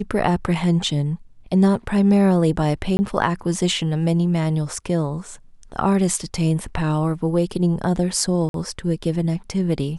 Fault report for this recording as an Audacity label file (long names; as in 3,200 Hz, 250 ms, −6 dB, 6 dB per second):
2.970000	2.990000	drop-out 20 ms
8.490000	8.540000	drop-out 52 ms